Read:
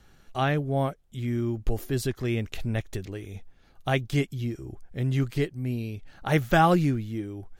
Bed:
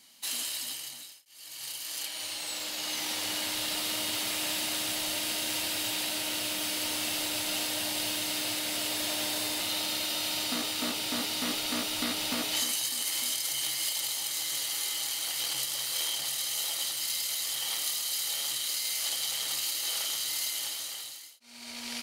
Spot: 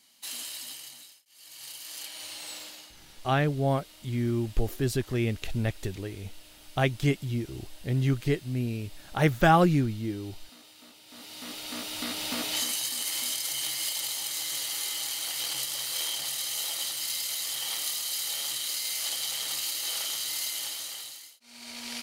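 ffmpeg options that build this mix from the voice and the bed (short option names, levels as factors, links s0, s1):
-filter_complex "[0:a]adelay=2900,volume=1[s0];[1:a]volume=7.08,afade=t=out:st=2.51:d=0.41:silence=0.141254,afade=t=in:st=11.06:d=1.4:silence=0.0891251[s1];[s0][s1]amix=inputs=2:normalize=0"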